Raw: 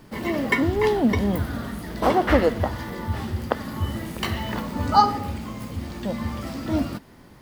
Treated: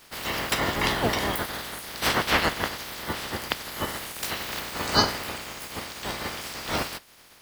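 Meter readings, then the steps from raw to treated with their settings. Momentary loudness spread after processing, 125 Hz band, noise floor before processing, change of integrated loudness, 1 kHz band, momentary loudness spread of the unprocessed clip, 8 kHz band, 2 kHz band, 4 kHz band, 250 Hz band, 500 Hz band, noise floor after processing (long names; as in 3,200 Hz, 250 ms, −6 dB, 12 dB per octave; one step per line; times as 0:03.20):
11 LU, −9.0 dB, −48 dBFS, −3.0 dB, −5.0 dB, 13 LU, +9.5 dB, +2.0 dB, +7.5 dB, −9.5 dB, −7.0 dB, −53 dBFS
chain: ceiling on every frequency bin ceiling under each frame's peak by 29 dB
level −4.5 dB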